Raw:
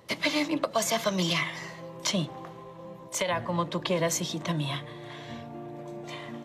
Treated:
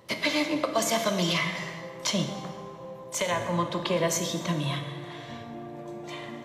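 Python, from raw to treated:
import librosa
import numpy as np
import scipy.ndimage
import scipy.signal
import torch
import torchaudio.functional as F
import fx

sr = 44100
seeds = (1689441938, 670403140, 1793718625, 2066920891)

y = fx.rev_plate(x, sr, seeds[0], rt60_s=1.9, hf_ratio=0.65, predelay_ms=0, drr_db=5.0)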